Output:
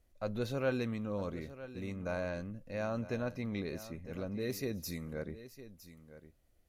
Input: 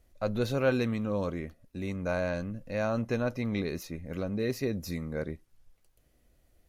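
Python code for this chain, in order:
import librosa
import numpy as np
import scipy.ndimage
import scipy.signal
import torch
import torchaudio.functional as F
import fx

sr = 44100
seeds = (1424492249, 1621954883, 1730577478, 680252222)

y = fx.high_shelf(x, sr, hz=fx.line((4.4, 6900.0), (5.12, 3500.0)), db=10.0, at=(4.4, 5.12), fade=0.02)
y = y + 10.0 ** (-14.5 / 20.0) * np.pad(y, (int(959 * sr / 1000.0), 0))[:len(y)]
y = y * 10.0 ** (-6.5 / 20.0)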